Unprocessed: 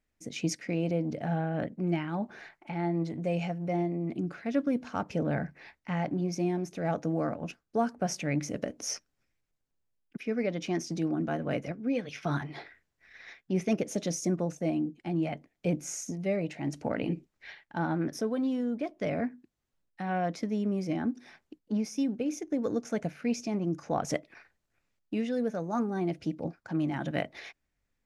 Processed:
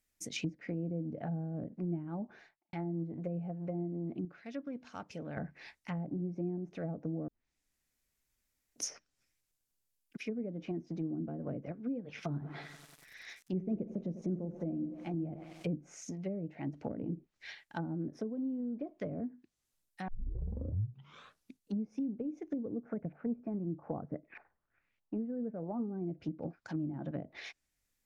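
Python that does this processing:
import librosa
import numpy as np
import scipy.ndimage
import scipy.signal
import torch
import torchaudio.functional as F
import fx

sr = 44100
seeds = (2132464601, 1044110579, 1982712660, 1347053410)

y = fx.studio_fade_out(x, sr, start_s=2.1, length_s=0.63)
y = fx.echo_crushed(y, sr, ms=95, feedback_pct=80, bits=8, wet_db=-14, at=(11.99, 15.69))
y = fx.filter_lfo_lowpass(y, sr, shape='saw_up', hz=1.6, low_hz=750.0, high_hz=2700.0, q=2.3, at=(22.78, 25.96), fade=0.02)
y = fx.edit(y, sr, fx.clip_gain(start_s=4.25, length_s=1.12, db=-8.0),
    fx.room_tone_fill(start_s=7.28, length_s=1.48),
    fx.tape_start(start_s=20.08, length_s=1.7), tone=tone)
y = fx.env_lowpass_down(y, sr, base_hz=350.0, full_db=-27.0)
y = F.preemphasis(torch.from_numpy(y), 0.8).numpy()
y = y * librosa.db_to_amplitude(8.5)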